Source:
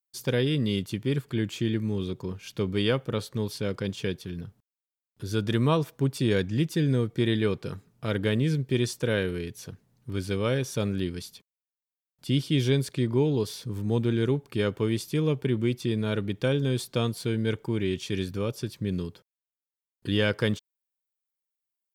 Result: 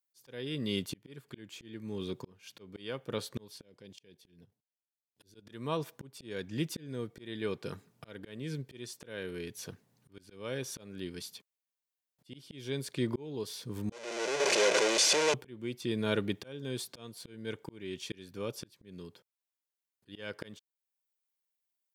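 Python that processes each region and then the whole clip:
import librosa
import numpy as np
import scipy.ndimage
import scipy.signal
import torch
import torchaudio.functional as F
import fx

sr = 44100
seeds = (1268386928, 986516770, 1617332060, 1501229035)

y = fx.chain(x, sr, fx.peak_eq(hz=1300.0, db=-9.0, octaves=0.67),
    fx.level_steps(step_db=13), at=(3.62, 5.47))
y = fx.chain(y, sr, fx.clip_1bit(),
    fx.cabinet(low_hz=240.0, low_slope=24, high_hz=8300.0, hz=(260.0, 610.0, 980.0, 2400.0, 6000.0), db=(-8, 6, -5, 4, 6)),
    fx.comb(ms=2.0, depth=0.38), at=(13.92, 15.34))
y = fx.highpass(y, sr, hz=280.0, slope=6)
y = fx.notch(y, sr, hz=1300.0, q=19.0)
y = fx.auto_swell(y, sr, attack_ms=666.0)
y = F.gain(torch.from_numpy(y), 1.0).numpy()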